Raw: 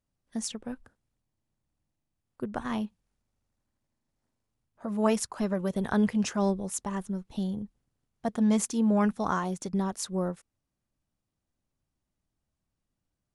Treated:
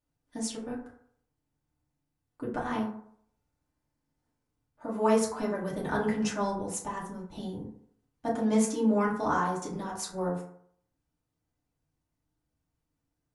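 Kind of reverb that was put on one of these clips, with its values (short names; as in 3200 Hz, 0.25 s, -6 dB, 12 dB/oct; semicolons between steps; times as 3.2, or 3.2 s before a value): FDN reverb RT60 0.63 s, low-frequency decay 0.85×, high-frequency decay 0.4×, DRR -6 dB; gain -5.5 dB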